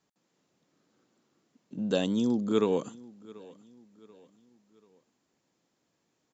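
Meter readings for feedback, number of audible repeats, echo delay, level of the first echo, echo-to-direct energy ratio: 42%, 2, 736 ms, −22.0 dB, −21.0 dB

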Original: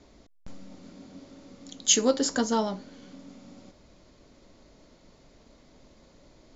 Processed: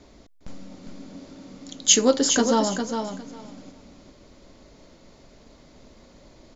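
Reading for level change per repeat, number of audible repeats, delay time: −15.5 dB, 2, 406 ms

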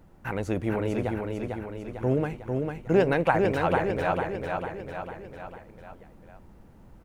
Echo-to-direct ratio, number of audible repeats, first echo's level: −2.5 dB, 5, −4.0 dB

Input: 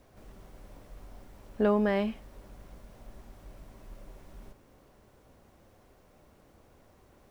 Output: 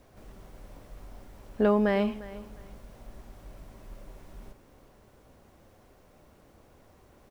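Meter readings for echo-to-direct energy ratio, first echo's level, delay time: −17.5 dB, −17.5 dB, 352 ms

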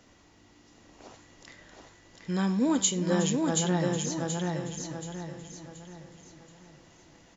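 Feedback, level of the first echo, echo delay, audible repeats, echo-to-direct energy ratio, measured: repeats not evenly spaced, −15.0 dB, 367 ms, 7, −2.5 dB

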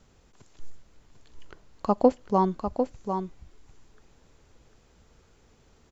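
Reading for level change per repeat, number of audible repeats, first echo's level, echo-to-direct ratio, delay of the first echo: repeats not evenly spaced, 1, −7.0 dB, −7.0 dB, 749 ms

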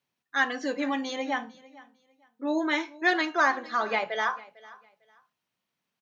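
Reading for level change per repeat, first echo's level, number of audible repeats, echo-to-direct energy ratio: −13.0 dB, −21.0 dB, 2, −21.0 dB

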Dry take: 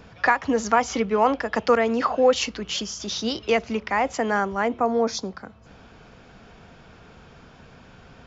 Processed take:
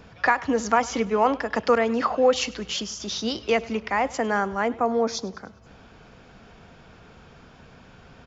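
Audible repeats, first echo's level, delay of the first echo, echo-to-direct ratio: 3, −21.0 dB, 101 ms, −19.5 dB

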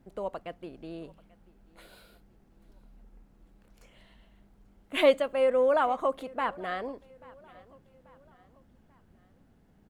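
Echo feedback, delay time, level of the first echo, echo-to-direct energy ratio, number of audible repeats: 45%, 837 ms, −23.5 dB, −22.5 dB, 2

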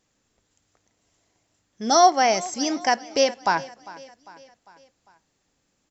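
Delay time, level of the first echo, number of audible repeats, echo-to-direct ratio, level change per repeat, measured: 400 ms, −19.5 dB, 3, −18.0 dB, −5.5 dB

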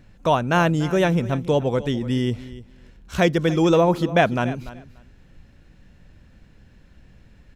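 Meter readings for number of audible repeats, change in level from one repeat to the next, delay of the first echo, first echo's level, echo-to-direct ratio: 2, −16.0 dB, 291 ms, −16.5 dB, −16.5 dB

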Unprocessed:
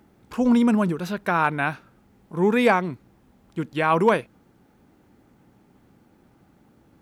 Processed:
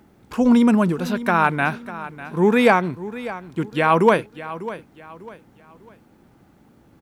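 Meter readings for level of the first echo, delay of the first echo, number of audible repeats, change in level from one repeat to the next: −15.0 dB, 598 ms, 3, −9.5 dB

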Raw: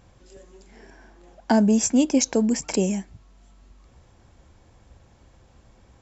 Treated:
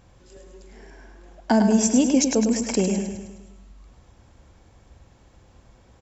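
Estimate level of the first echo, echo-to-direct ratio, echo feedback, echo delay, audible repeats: −6.5 dB, −5.0 dB, 54%, 104 ms, 6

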